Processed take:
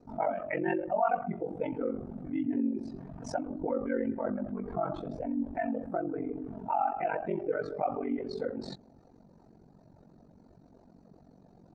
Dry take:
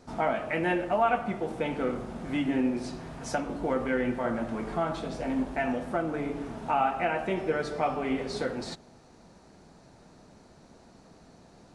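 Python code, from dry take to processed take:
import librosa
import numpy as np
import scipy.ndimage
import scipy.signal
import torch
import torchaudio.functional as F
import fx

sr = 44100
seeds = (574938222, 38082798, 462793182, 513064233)

y = fx.spec_expand(x, sr, power=1.8)
y = y * np.sin(2.0 * np.pi * 23.0 * np.arange(len(y)) / sr)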